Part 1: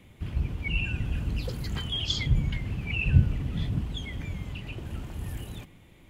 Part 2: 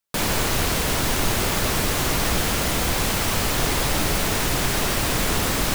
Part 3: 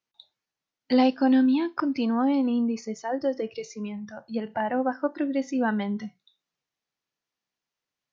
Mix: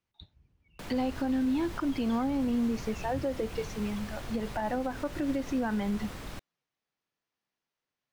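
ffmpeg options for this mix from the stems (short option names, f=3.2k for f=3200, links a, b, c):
-filter_complex "[0:a]volume=-17dB[a];[1:a]acrossover=split=170[b][c];[c]acompressor=threshold=-25dB:ratio=2.5[d];[b][d]amix=inputs=2:normalize=0,adelay=650,volume=-16dB[e];[2:a]acompressor=threshold=-22dB:ratio=6,volume=0.5dB,asplit=2[f][g];[g]apad=whole_len=268686[h];[a][h]sidechaingate=range=-19dB:threshold=-51dB:ratio=16:detection=peak[i];[i][e][f]amix=inputs=3:normalize=0,highshelf=f=5.4k:g=-10.5,alimiter=limit=-22.5dB:level=0:latency=1:release=104"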